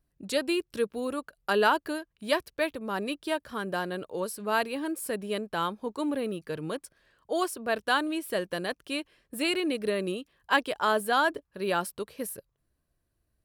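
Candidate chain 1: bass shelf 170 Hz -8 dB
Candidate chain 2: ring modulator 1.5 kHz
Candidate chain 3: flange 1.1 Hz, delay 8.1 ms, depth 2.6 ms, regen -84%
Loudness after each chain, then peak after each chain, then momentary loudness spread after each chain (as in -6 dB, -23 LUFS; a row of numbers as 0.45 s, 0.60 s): -31.0 LUFS, -32.0 LUFS, -34.5 LUFS; -9.5 dBFS, -10.5 dBFS, -14.5 dBFS; 11 LU, 10 LU, 11 LU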